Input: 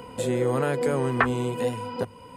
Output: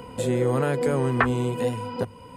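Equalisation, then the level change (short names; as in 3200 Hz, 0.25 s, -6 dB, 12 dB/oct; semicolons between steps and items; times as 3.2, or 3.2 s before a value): low shelf 200 Hz +5 dB; 0.0 dB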